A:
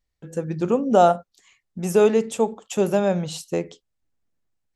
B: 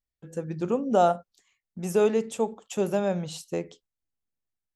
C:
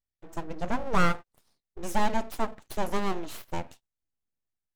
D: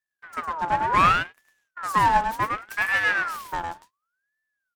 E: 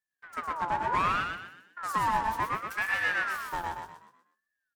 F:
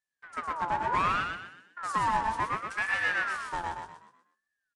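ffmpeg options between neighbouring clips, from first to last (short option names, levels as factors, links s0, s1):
-af "agate=range=0.447:threshold=0.00224:ratio=16:detection=peak,volume=0.531"
-af "aeval=exprs='abs(val(0))':c=same"
-af "aecho=1:1:106:0.631,aeval=exprs='val(0)*sin(2*PI*1300*n/s+1300*0.35/0.68*sin(2*PI*0.68*n/s))':c=same,volume=1.41"
-filter_complex "[0:a]acompressor=threshold=0.0794:ratio=2.5,asplit=2[s0][s1];[s1]asplit=5[s2][s3][s4][s5][s6];[s2]adelay=124,afreqshift=42,volume=0.562[s7];[s3]adelay=248,afreqshift=84,volume=0.214[s8];[s4]adelay=372,afreqshift=126,volume=0.0813[s9];[s5]adelay=496,afreqshift=168,volume=0.0309[s10];[s6]adelay=620,afreqshift=210,volume=0.0117[s11];[s7][s8][s9][s10][s11]amix=inputs=5:normalize=0[s12];[s0][s12]amix=inputs=2:normalize=0,volume=0.596"
-af "aresample=22050,aresample=44100"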